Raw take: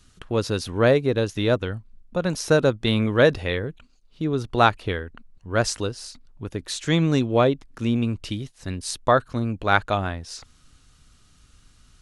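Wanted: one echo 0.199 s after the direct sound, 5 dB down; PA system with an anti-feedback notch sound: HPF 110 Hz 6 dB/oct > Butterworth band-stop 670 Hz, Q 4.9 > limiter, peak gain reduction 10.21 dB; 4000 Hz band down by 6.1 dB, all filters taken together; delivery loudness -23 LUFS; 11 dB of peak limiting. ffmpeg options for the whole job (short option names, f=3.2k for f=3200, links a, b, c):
-af "equalizer=f=4k:t=o:g=-7.5,alimiter=limit=-15dB:level=0:latency=1,highpass=f=110:p=1,asuperstop=centerf=670:order=8:qfactor=4.9,aecho=1:1:199:0.562,volume=9.5dB,alimiter=limit=-13.5dB:level=0:latency=1"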